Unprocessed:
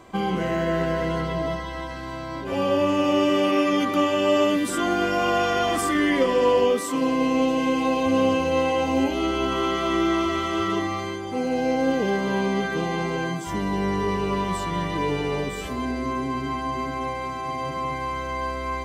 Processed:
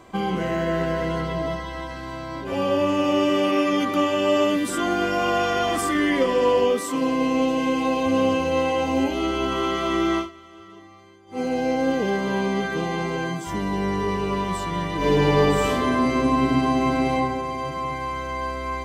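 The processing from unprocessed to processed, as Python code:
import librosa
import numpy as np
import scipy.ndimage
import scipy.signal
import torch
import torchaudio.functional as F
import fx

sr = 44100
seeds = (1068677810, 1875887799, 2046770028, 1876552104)

y = fx.reverb_throw(x, sr, start_s=14.97, length_s=2.16, rt60_s=1.3, drr_db=-7.5)
y = fx.edit(y, sr, fx.fade_down_up(start_s=10.18, length_s=1.22, db=-20.5, fade_s=0.15, curve='qua'), tone=tone)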